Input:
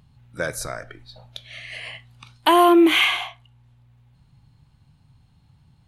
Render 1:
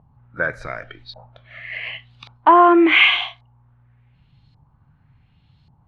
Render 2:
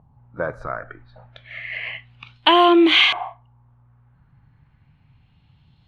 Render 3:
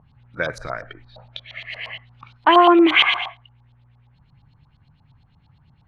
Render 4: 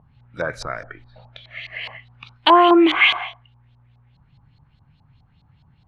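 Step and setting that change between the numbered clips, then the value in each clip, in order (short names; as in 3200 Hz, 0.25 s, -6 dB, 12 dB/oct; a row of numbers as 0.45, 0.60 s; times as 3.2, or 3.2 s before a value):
LFO low-pass, rate: 0.88, 0.32, 8.6, 4.8 Hz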